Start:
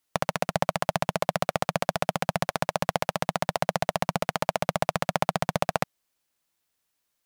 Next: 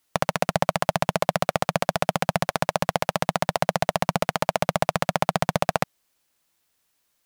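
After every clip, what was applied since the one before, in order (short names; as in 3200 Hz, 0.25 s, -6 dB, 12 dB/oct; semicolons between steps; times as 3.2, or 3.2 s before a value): limiter -9 dBFS, peak gain reduction 4.5 dB; gain +6.5 dB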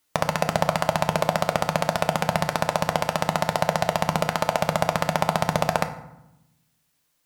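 FDN reverb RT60 0.87 s, low-frequency decay 1.6×, high-frequency decay 0.6×, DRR 7 dB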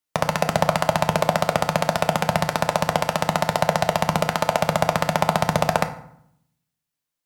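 three-band expander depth 40%; gain +2.5 dB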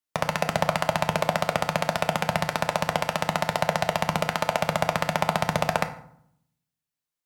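dynamic EQ 2300 Hz, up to +4 dB, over -38 dBFS, Q 0.94; gain -5 dB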